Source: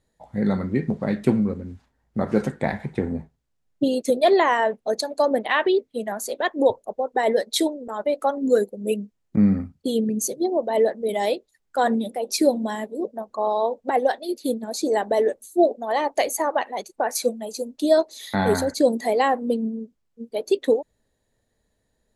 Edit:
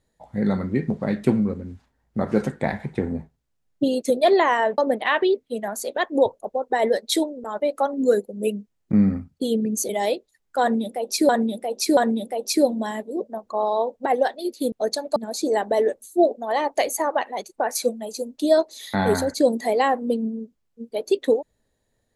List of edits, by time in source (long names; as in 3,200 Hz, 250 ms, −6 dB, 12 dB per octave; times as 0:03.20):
0:04.78–0:05.22: move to 0:14.56
0:10.33–0:11.09: remove
0:11.81–0:12.49: repeat, 3 plays